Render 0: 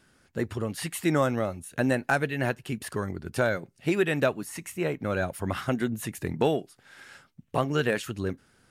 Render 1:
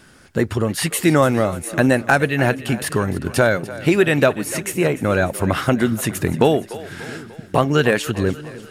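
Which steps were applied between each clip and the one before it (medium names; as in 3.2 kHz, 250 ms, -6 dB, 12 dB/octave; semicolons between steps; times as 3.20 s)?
in parallel at +1.5 dB: compression, threshold -33 dBFS, peak gain reduction 13.5 dB; on the sum: two-band feedback delay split 350 Hz, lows 678 ms, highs 295 ms, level -16 dB; trim +7 dB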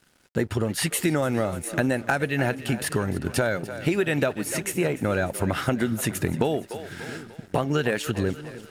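compression, threshold -16 dBFS, peak gain reduction 7 dB; crossover distortion -47 dBFS; band-stop 1.1 kHz, Q 12; trim -3 dB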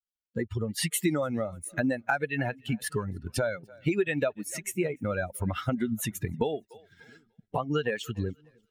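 expander on every frequency bin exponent 2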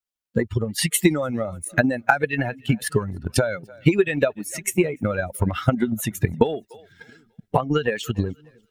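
transient shaper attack +9 dB, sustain +5 dB; trim +3 dB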